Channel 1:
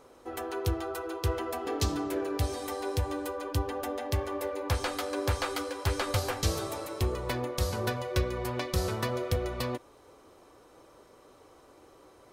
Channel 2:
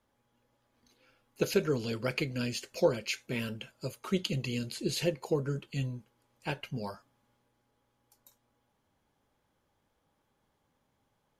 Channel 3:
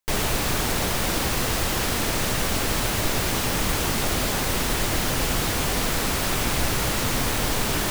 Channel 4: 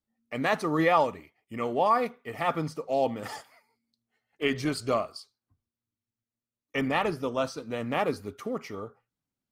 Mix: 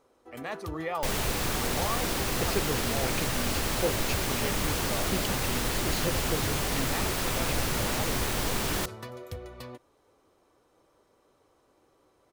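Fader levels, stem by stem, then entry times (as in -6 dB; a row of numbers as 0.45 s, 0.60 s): -10.0 dB, -3.5 dB, -5.5 dB, -10.5 dB; 0.00 s, 1.00 s, 0.95 s, 0.00 s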